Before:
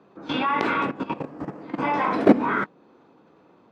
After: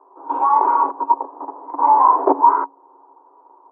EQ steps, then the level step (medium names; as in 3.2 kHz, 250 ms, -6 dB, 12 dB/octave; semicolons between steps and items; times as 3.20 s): rippled Chebyshev high-pass 270 Hz, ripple 9 dB; resonant low-pass 950 Hz, resonance Q 7.8; peaking EQ 580 Hz +11 dB 2.1 oct; -6.5 dB